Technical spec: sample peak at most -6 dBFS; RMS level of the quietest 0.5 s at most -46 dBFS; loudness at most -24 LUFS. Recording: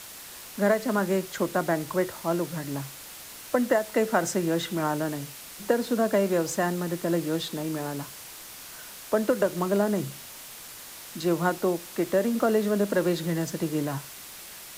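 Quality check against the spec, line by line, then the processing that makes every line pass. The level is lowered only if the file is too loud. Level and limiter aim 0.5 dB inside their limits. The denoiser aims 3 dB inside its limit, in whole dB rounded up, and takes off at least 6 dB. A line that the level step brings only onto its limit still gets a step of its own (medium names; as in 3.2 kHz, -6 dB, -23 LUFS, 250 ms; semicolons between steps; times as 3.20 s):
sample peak -9.5 dBFS: pass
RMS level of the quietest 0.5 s -43 dBFS: fail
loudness -27.0 LUFS: pass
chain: noise reduction 6 dB, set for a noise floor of -43 dBFS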